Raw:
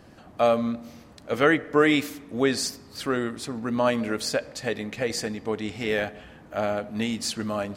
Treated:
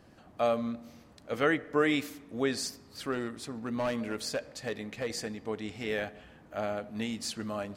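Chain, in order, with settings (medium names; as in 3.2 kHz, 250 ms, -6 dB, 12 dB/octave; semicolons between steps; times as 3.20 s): 3.12–5.17 s: hard clipper -19 dBFS, distortion -21 dB; trim -7 dB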